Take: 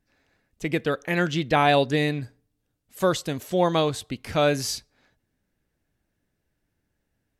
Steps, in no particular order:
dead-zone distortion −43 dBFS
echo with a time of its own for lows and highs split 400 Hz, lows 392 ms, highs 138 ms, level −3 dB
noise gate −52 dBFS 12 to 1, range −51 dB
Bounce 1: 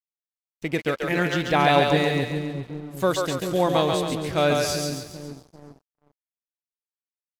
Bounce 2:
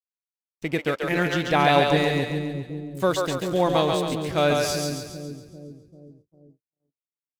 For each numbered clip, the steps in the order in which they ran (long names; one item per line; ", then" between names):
echo with a time of its own for lows and highs, then dead-zone distortion, then noise gate
dead-zone distortion, then echo with a time of its own for lows and highs, then noise gate